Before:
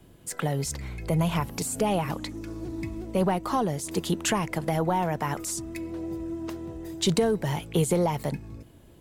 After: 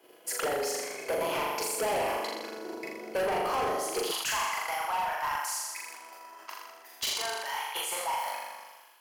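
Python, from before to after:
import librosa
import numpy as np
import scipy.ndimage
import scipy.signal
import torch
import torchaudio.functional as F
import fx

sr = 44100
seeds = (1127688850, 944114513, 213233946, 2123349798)

y = fx.octave_divider(x, sr, octaves=2, level_db=4.0)
y = fx.peak_eq(y, sr, hz=7900.0, db=-9.0, octaves=0.43)
y = fx.room_flutter(y, sr, wall_m=7.0, rt60_s=1.1)
y = fx.transient(y, sr, attack_db=7, sustain_db=0)
y = fx.cheby1_highpass(y, sr, hz=fx.steps((0.0, 430.0), (4.1, 960.0)), order=3)
y = np.clip(y, -10.0 ** (-26.5 / 20.0), 10.0 ** (-26.5 / 20.0))
y = fx.notch(y, sr, hz=3700.0, q=6.8)
y = fx.sustainer(y, sr, db_per_s=39.0)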